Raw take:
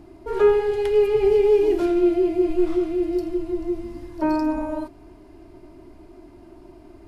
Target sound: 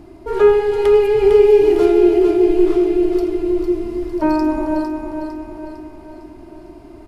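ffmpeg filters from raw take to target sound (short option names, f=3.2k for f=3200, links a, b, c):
-af "aecho=1:1:454|908|1362|1816|2270|2724:0.473|0.237|0.118|0.0591|0.0296|0.0148,volume=5dB"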